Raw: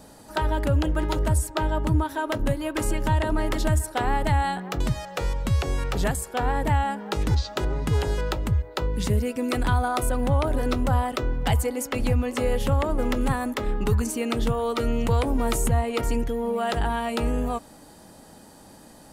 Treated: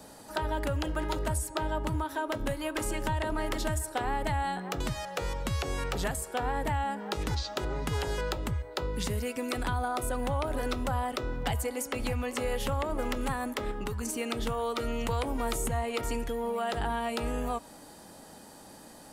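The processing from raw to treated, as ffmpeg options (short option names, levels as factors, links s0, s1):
-filter_complex "[0:a]asettb=1/sr,asplit=3[s0][s1][s2];[s0]atrim=end=13.714[s3];[s1]atrim=start=13.71:end=14.18,asetpts=PTS-STARTPTS,afade=t=in:d=0.004:c=qsin,afade=t=out:st=0.466:d=0.004:c=qsin,acompressor=threshold=0.0562:ratio=6:attack=3.2:release=140:knee=1:detection=peak[s4];[s2]atrim=start=14.176[s5];[s3][s4]acrossfade=d=0.004:c1=hsin:c2=qsin[s6];[s6][s5]acrossfade=d=0.004:c1=qsin:c2=hsin,lowshelf=f=220:g=-6.5,bandreject=f=319.9:t=h:w=4,bandreject=f=639.8:t=h:w=4,bandreject=f=959.7:t=h:w=4,bandreject=f=1279.6:t=h:w=4,bandreject=f=1599.5:t=h:w=4,bandreject=f=1919.4:t=h:w=4,bandreject=f=2239.3:t=h:w=4,bandreject=f=2559.2:t=h:w=4,bandreject=f=2879.1:t=h:w=4,bandreject=f=3199:t=h:w=4,bandreject=f=3518.9:t=h:w=4,bandreject=f=3838.8:t=h:w=4,bandreject=f=4158.7:t=h:w=4,bandreject=f=4478.6:t=h:w=4,bandreject=f=4798.5:t=h:w=4,bandreject=f=5118.4:t=h:w=4,bandreject=f=5438.3:t=h:w=4,bandreject=f=5758.2:t=h:w=4,bandreject=f=6078.1:t=h:w=4,bandreject=f=6398:t=h:w=4,bandreject=f=6717.9:t=h:w=4,bandreject=f=7037.8:t=h:w=4,bandreject=f=7357.7:t=h:w=4,bandreject=f=7677.6:t=h:w=4,bandreject=f=7997.5:t=h:w=4,bandreject=f=8317.4:t=h:w=4,bandreject=f=8637.3:t=h:w=4,bandreject=f=8957.2:t=h:w=4,bandreject=f=9277.1:t=h:w=4,bandreject=f=9597:t=h:w=4,bandreject=f=9916.9:t=h:w=4,bandreject=f=10236.8:t=h:w=4,bandreject=f=10556.7:t=h:w=4,bandreject=f=10876.6:t=h:w=4,acrossover=split=84|670[s7][s8][s9];[s7]acompressor=threshold=0.0224:ratio=4[s10];[s8]acompressor=threshold=0.02:ratio=4[s11];[s9]acompressor=threshold=0.0224:ratio=4[s12];[s10][s11][s12]amix=inputs=3:normalize=0"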